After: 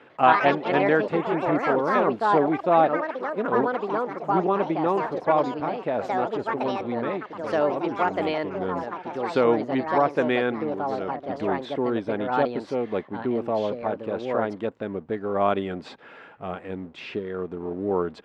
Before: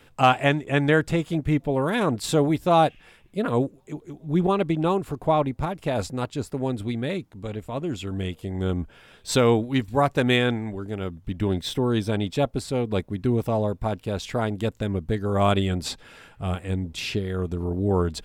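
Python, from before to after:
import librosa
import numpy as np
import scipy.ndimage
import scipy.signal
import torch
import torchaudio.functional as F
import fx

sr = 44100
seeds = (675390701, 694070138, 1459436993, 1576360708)

y = fx.law_mismatch(x, sr, coded='mu')
y = scipy.signal.sosfilt(scipy.signal.butter(2, 280.0, 'highpass', fs=sr, output='sos'), y)
y = fx.echo_pitch(y, sr, ms=97, semitones=4, count=3, db_per_echo=-3.0)
y = scipy.signal.sosfilt(scipy.signal.butter(2, 1800.0, 'lowpass', fs=sr, output='sos'), y)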